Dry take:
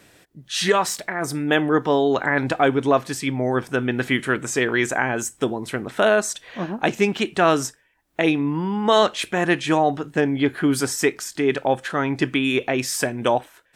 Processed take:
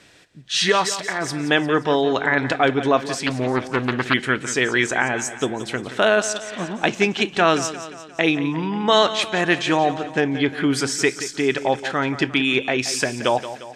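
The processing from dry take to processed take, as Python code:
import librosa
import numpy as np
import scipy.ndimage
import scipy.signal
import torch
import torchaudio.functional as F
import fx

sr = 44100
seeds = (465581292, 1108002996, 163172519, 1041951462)

y = scipy.signal.sosfilt(scipy.signal.butter(2, 5700.0, 'lowpass', fs=sr, output='sos'), x)
y = fx.high_shelf(y, sr, hz=2200.0, db=8.5)
y = fx.echo_feedback(y, sr, ms=176, feedback_pct=53, wet_db=-13.0)
y = fx.doppler_dist(y, sr, depth_ms=0.35, at=(3.26, 4.14))
y = F.gain(torch.from_numpy(y), -1.0).numpy()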